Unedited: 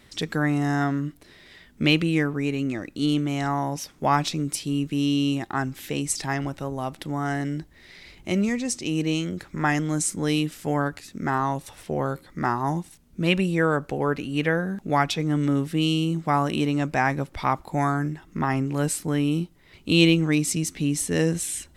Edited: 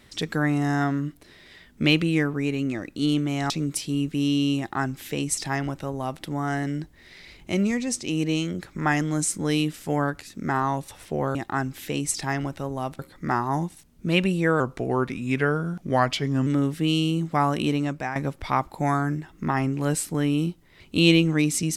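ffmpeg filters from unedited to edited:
-filter_complex "[0:a]asplit=7[a][b][c][d][e][f][g];[a]atrim=end=3.502[h];[b]atrim=start=4.278:end=12.132[i];[c]atrim=start=5.358:end=7.002[j];[d]atrim=start=12.128:end=13.744[k];[e]atrim=start=13.74:end=15.4,asetpts=PTS-STARTPTS,asetrate=39249,aresample=44100[l];[f]atrim=start=15.396:end=17.09,asetpts=PTS-STARTPTS,afade=t=out:st=1.274:d=0.42:silence=0.266073[m];[g]atrim=start=17.09,asetpts=PTS-STARTPTS,afade=t=in:d=0.004:c=hsin:silence=0.266073[n];[h][i]acrossfade=d=0.004:c1=hsin:c2=hsin[o];[o][j]acrossfade=d=0.004:c1=hsin:c2=hsin[p];[p][k]acrossfade=d=0.004:c1=hsin:c2=hsin[q];[q][l]acrossfade=d=0.004:c1=hsin:c2=hsin[r];[m][n]concat=n=2:v=0:a=1[s];[r][s]acrossfade=d=0.004:c1=hsin:c2=hsin"

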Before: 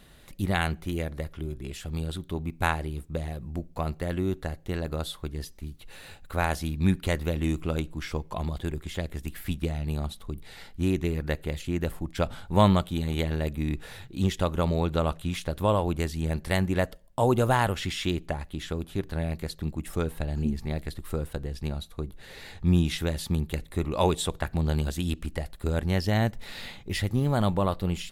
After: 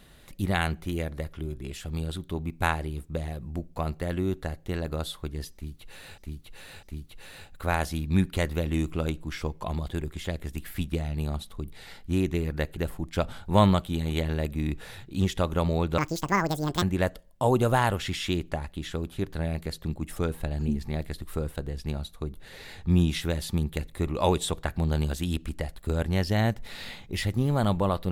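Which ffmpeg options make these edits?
-filter_complex "[0:a]asplit=6[a][b][c][d][e][f];[a]atrim=end=6.182[g];[b]atrim=start=5.528:end=6.182[h];[c]atrim=start=5.528:end=11.472[i];[d]atrim=start=11.788:end=15.004[j];[e]atrim=start=15:end=16.59,asetpts=PTS-STARTPTS,asetrate=83349,aresample=44100[k];[f]atrim=start=16.586[l];[g][h]acrossfade=d=0.004:c1=hsin:c2=hsin[m];[m][i]acrossfade=d=0.004:c1=hsin:c2=hsin[n];[n][j]acrossfade=d=0.004:c1=hsin:c2=hsin[o];[o][k]acrossfade=d=0.004:c1=hsin:c2=hsin[p];[p][l]acrossfade=d=0.004:c1=hsin:c2=hsin"

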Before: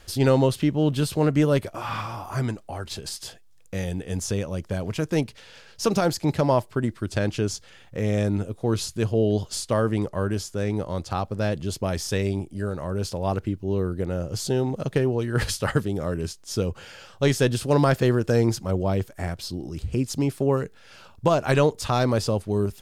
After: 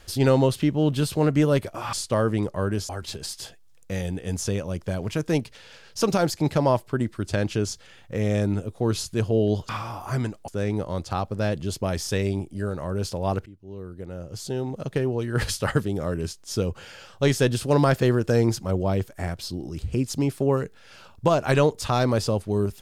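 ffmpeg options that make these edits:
-filter_complex "[0:a]asplit=6[a][b][c][d][e][f];[a]atrim=end=1.932[g];[b]atrim=start=9.518:end=10.482[h];[c]atrim=start=2.718:end=9.522[i];[d]atrim=start=1.928:end=2.722[j];[e]atrim=start=10.478:end=13.46,asetpts=PTS-STARTPTS,afade=t=out:st=2.978:d=0.004:c=hsin:silence=0.0891251[k];[f]atrim=start=13.46,asetpts=PTS-STARTPTS,afade=t=in:d=2.13:silence=0.0891251[l];[g][h]acrossfade=d=0.004:c1=hsin:c2=hsin[m];[m][i]acrossfade=d=0.004:c1=hsin:c2=hsin[n];[n][j]acrossfade=d=0.004:c1=hsin:c2=hsin[o];[k][l]concat=n=2:v=0:a=1[p];[o][p]acrossfade=d=0.004:c1=hsin:c2=hsin"

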